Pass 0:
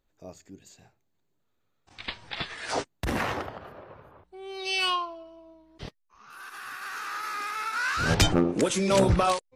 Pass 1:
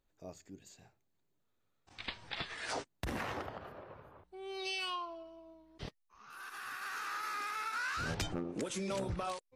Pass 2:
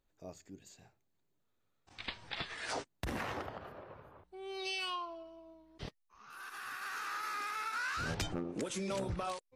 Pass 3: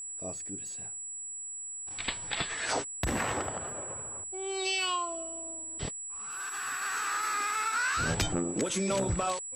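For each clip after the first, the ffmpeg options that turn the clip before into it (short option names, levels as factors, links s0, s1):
-af "acompressor=threshold=0.0282:ratio=5,volume=0.596"
-af anull
-af "aeval=exprs='val(0)+0.00562*sin(2*PI*7800*n/s)':c=same,volume=2.37"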